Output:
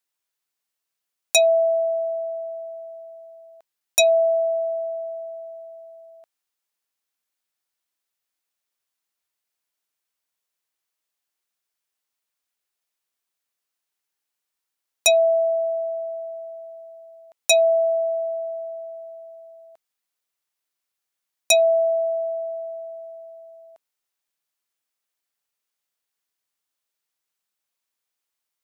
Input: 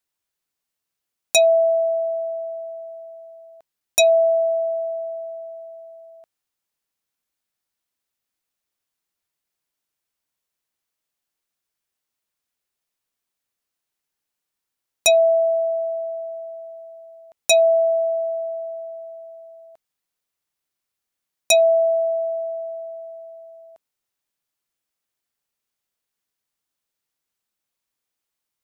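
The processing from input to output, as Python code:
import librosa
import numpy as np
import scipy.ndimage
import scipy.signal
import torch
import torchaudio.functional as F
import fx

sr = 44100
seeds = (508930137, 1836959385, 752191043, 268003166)

y = fx.low_shelf(x, sr, hz=320.0, db=-10.0)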